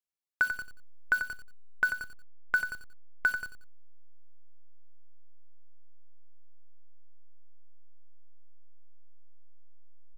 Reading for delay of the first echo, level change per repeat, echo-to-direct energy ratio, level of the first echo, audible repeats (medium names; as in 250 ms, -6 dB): 90 ms, -10.0 dB, -8.5 dB, -9.0 dB, 2